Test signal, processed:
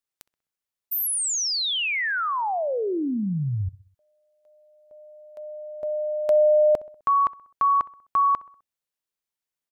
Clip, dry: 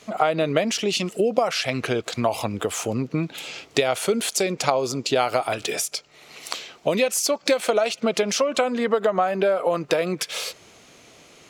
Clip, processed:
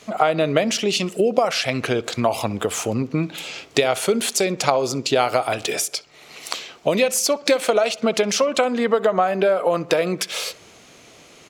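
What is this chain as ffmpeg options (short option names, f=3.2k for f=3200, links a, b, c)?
-filter_complex "[0:a]asplit=2[a][b];[b]adelay=64,lowpass=f=2.5k:p=1,volume=-19.5dB,asplit=2[c][d];[d]adelay=64,lowpass=f=2.5k:p=1,volume=0.52,asplit=2[e][f];[f]adelay=64,lowpass=f=2.5k:p=1,volume=0.52,asplit=2[g][h];[h]adelay=64,lowpass=f=2.5k:p=1,volume=0.52[i];[a][c][e][g][i]amix=inputs=5:normalize=0,volume=2.5dB"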